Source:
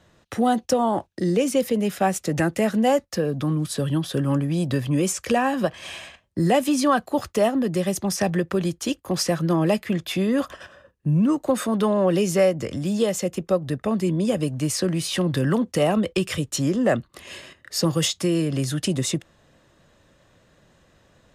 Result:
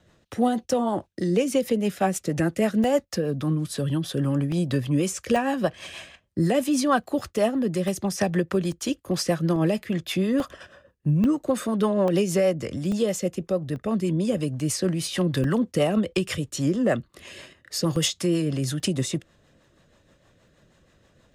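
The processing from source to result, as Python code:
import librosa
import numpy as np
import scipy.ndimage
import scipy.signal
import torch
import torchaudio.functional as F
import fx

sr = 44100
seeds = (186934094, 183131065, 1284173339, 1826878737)

y = fx.rotary(x, sr, hz=6.3)
y = fx.buffer_crackle(y, sr, first_s=0.32, period_s=0.84, block=64, kind='zero')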